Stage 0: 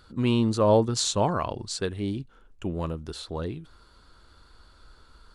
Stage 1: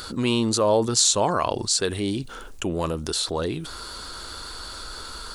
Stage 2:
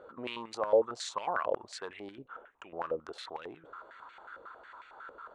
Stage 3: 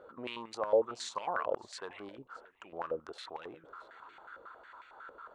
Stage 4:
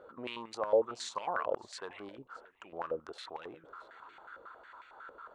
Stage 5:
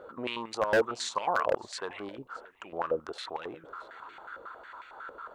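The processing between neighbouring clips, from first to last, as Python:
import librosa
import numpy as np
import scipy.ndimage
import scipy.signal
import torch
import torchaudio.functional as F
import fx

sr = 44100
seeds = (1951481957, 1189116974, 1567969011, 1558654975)

y1 = fx.bass_treble(x, sr, bass_db=-8, treble_db=10)
y1 = fx.env_flatten(y1, sr, amount_pct=50)
y2 = fx.wiener(y1, sr, points=9)
y2 = fx.filter_held_bandpass(y2, sr, hz=11.0, low_hz=520.0, high_hz=2300.0)
y3 = y2 + 10.0 ** (-22.5 / 20.0) * np.pad(y2, (int(620 * sr / 1000.0), 0))[:len(y2)]
y3 = y3 * 10.0 ** (-2.0 / 20.0)
y4 = y3
y5 = 10.0 ** (-23.5 / 20.0) * (np.abs((y4 / 10.0 ** (-23.5 / 20.0) + 3.0) % 4.0 - 2.0) - 1.0)
y5 = y5 * 10.0 ** (6.5 / 20.0)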